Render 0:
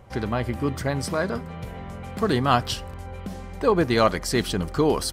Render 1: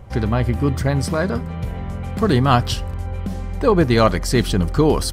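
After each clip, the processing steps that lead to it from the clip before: bass shelf 160 Hz +10.5 dB; trim +3 dB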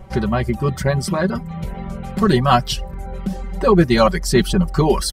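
reverb removal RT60 0.65 s; comb 5.3 ms, depth 84%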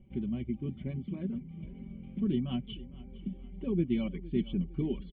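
cascade formant filter i; feedback delay 460 ms, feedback 43%, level -18.5 dB; trim -6.5 dB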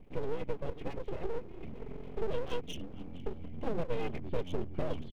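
comb 3.9 ms, depth 68%; compression, threshold -28 dBFS, peak gain reduction 6.5 dB; full-wave rectifier; trim +2 dB

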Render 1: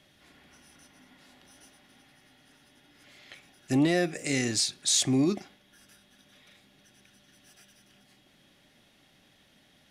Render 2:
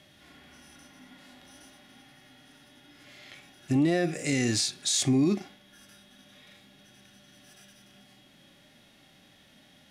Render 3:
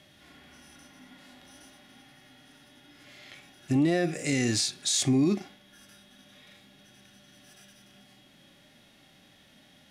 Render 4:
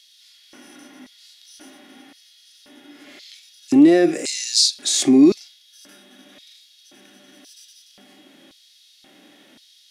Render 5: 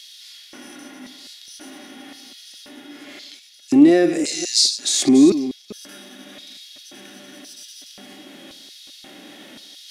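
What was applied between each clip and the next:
harmonic-percussive split percussive -13 dB; peak limiter -24.5 dBFS, peak gain reduction 9 dB; trim +7.5 dB
no audible change
high-pass 110 Hz; LFO high-pass square 0.94 Hz 300–4400 Hz; trim +6.5 dB
chunks repeated in reverse 212 ms, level -12 dB; reverse; upward compressor, threshold -32 dBFS; reverse

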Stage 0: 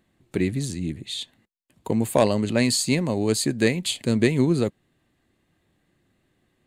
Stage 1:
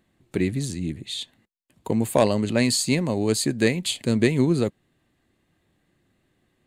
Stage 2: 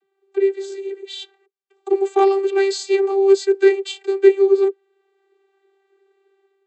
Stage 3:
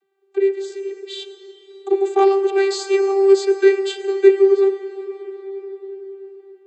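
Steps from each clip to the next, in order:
no audible change
vocoder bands 32, saw 391 Hz; level rider gain up to 8.5 dB
reverberation RT60 5.1 s, pre-delay 42 ms, DRR 9.5 dB

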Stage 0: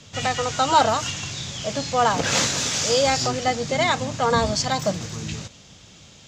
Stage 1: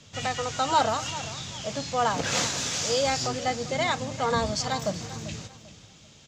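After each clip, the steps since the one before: feedback delay 393 ms, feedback 30%, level -15 dB; trim -5.5 dB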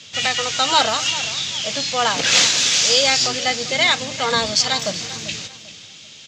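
frequency weighting D; trim +4 dB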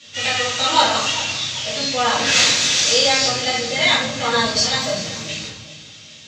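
simulated room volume 170 m³, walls mixed, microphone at 2.4 m; trim -8 dB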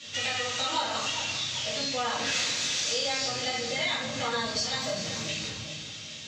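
compression 3:1, threshold -31 dBFS, peak gain reduction 16 dB

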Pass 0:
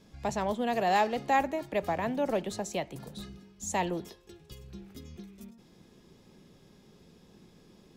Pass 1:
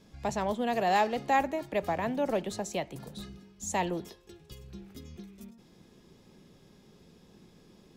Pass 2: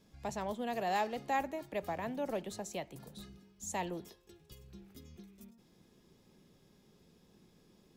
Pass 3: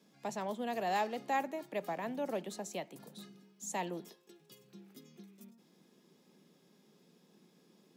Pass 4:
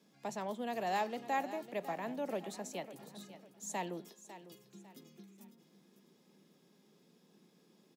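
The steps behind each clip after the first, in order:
no audible change
treble shelf 11 kHz +8.5 dB; trim -7.5 dB
steep high-pass 160 Hz 36 dB/octave
feedback delay 551 ms, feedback 34%, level -14 dB; trim -1.5 dB

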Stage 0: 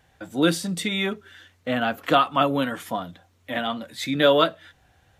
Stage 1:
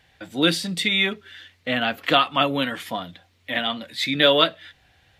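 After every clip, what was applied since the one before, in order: high-order bell 3 kHz +8 dB; trim -1 dB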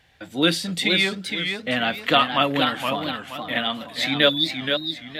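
spectral selection erased 4.29–4.56 s, 390–3400 Hz; modulated delay 471 ms, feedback 36%, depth 156 cents, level -6 dB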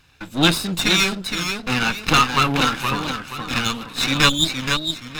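comb filter that takes the minimum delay 0.77 ms; trim +4.5 dB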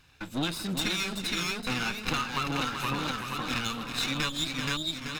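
compression 6:1, threshold -23 dBFS, peak gain reduction 12.5 dB; on a send: delay 384 ms -7.5 dB; on the sum: trim -4.5 dB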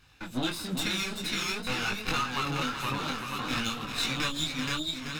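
detune thickener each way 18 cents; trim +3.5 dB

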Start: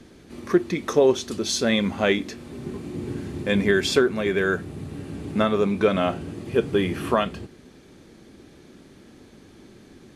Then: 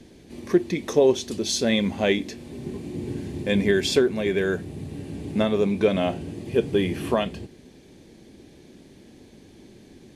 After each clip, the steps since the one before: peaking EQ 1.3 kHz -11.5 dB 0.53 oct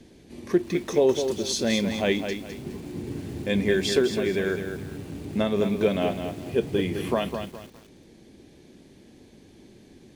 bit-crushed delay 207 ms, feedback 35%, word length 7-bit, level -7 dB; trim -2.5 dB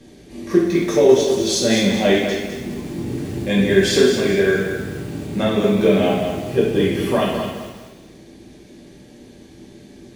two-slope reverb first 0.74 s, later 2 s, DRR -5 dB; trim +2 dB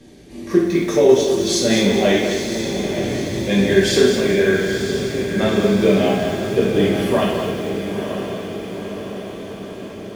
echo that smears into a reverb 936 ms, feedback 61%, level -8 dB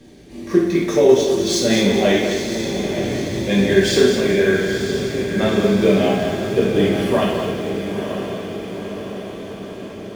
median filter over 3 samples

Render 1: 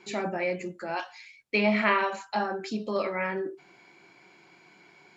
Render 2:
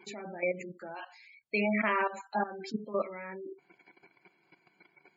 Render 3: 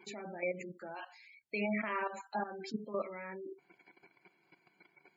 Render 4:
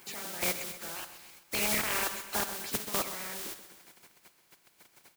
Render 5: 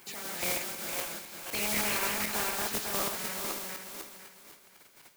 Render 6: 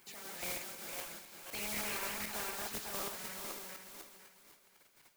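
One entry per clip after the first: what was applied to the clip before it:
level held to a coarse grid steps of 14 dB; spectral gate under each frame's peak -20 dB strong
peak limiter -24 dBFS, peak gain reduction 8.5 dB; trim -2.5 dB
spectral contrast reduction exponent 0.17; on a send: feedback delay 129 ms, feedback 57%, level -13 dB; on the sum: trim +5.5 dB
backward echo that repeats 251 ms, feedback 51%, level -1 dB; in parallel at -5 dB: hard clipper -32.5 dBFS, distortion -6 dB; on the sum: trim -4 dB
flange 1.8 Hz, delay 0.4 ms, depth 2.2 ms, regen +76%; trim -4 dB

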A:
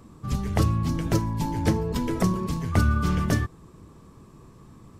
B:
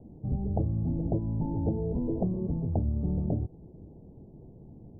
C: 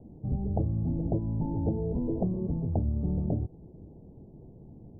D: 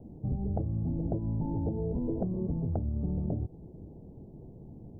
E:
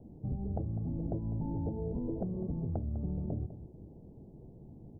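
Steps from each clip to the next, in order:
compression 3:1, threshold -26 dBFS, peak gain reduction 9 dB; steep low-pass 810 Hz 72 dB/octave
no audible change
compression, threshold -29 dBFS, peak gain reduction 7 dB; trim +1.5 dB
delay 201 ms -13 dB; trim -4 dB

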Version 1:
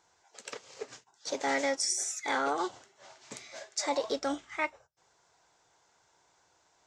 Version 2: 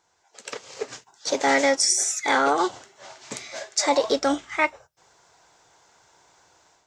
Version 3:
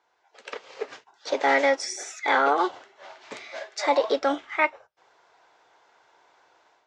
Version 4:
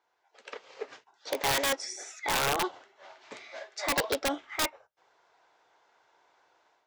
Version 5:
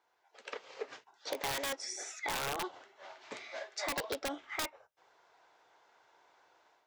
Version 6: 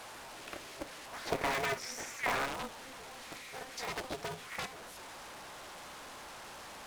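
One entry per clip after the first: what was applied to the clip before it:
level rider gain up to 10 dB
three-band isolator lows -16 dB, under 290 Hz, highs -21 dB, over 4 kHz
integer overflow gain 14.5 dB; trim -6 dB
compression 4:1, threshold -35 dBFS, peak gain reduction 10 dB
one-bit delta coder 64 kbps, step -40 dBFS; time-frequency box 1.13–2.45 s, 330–2500 Hz +7 dB; polarity switched at an audio rate 130 Hz; trim -2.5 dB

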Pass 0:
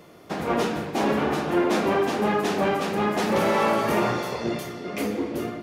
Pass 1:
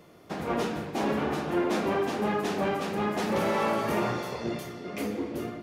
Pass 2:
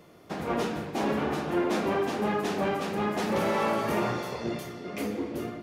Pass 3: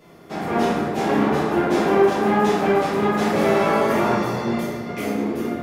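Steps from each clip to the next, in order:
bass shelf 160 Hz +3.5 dB; trim -5.5 dB
no audible change
plate-style reverb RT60 1.3 s, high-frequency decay 0.45×, DRR -7.5 dB

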